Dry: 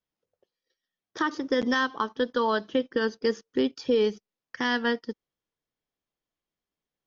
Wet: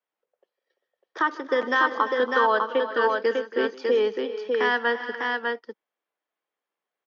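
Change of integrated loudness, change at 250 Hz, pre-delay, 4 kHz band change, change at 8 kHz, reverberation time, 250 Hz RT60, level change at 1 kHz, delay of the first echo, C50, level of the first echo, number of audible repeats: +3.0 dB, -5.0 dB, no reverb, 0.0 dB, no reading, no reverb, no reverb, +7.0 dB, 154 ms, no reverb, -20.0 dB, 5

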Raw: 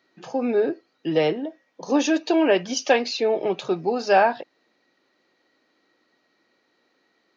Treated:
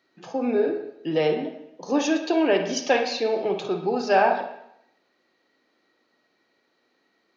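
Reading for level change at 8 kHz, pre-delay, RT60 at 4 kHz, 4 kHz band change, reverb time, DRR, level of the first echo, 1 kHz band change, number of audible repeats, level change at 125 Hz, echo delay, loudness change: no reading, 36 ms, 0.75 s, -2.0 dB, 0.75 s, 5.0 dB, no echo, -1.0 dB, no echo, -1.0 dB, no echo, -1.5 dB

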